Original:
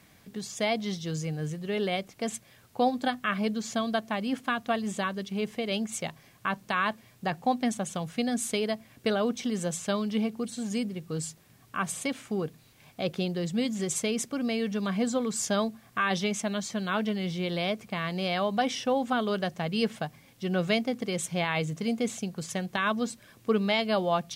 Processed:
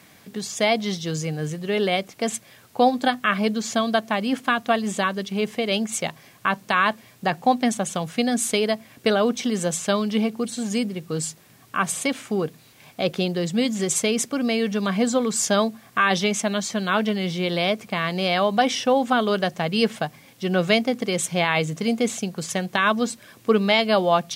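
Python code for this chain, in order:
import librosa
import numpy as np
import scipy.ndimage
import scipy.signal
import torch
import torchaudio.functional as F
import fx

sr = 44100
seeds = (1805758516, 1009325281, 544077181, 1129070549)

y = fx.highpass(x, sr, hz=180.0, slope=6)
y = y * 10.0 ** (8.0 / 20.0)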